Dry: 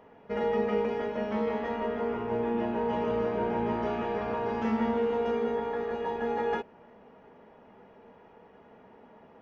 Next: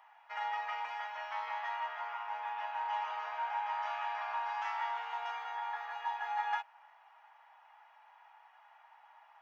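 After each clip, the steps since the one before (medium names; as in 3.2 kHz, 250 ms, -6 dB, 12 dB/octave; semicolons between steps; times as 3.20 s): elliptic high-pass 800 Hz, stop band 50 dB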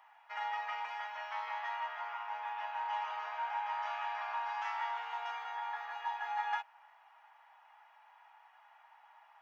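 bass shelf 430 Hz -5.5 dB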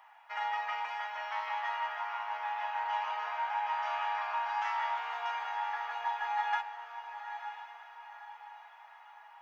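echo that smears into a reverb 973 ms, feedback 45%, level -9.5 dB; trim +3.5 dB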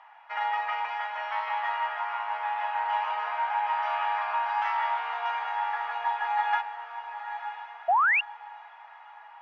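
painted sound rise, 7.88–8.21 s, 650–2900 Hz -27 dBFS; distance through air 180 m; trim +6.5 dB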